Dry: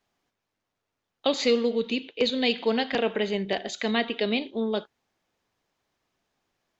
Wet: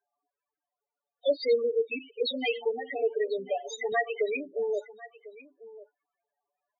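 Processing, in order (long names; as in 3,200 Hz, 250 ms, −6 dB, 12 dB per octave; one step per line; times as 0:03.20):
0:01.35–0:01.91: noise gate −29 dBFS, range −12 dB
0:02.51–0:03.01: downward compressor, threshold −24 dBFS, peak gain reduction 5.5 dB
high-pass filter 400 Hz 12 dB per octave
comb filter 6.9 ms, depth 56%
spectral peaks only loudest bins 4
high-shelf EQ 2,900 Hz +6 dB
single-tap delay 1,046 ms −18 dB
0:03.92–0:04.32: multiband upward and downward compressor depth 100%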